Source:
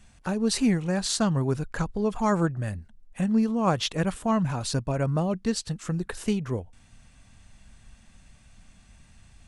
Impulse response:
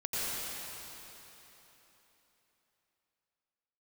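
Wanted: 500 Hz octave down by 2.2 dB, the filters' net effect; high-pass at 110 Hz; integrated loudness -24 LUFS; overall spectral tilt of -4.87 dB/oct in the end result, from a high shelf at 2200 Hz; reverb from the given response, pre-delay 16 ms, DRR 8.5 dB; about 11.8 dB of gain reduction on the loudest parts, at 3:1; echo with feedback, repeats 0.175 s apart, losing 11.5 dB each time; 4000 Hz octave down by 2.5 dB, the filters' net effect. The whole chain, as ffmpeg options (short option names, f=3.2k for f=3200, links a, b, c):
-filter_complex "[0:a]highpass=110,equalizer=f=500:t=o:g=-3,highshelf=f=2.2k:g=4,equalizer=f=4k:t=o:g=-7,acompressor=threshold=-36dB:ratio=3,aecho=1:1:175|350|525:0.266|0.0718|0.0194,asplit=2[a][b];[1:a]atrim=start_sample=2205,adelay=16[c];[b][c]afir=irnorm=-1:irlink=0,volume=-16dB[d];[a][d]amix=inputs=2:normalize=0,volume=12.5dB"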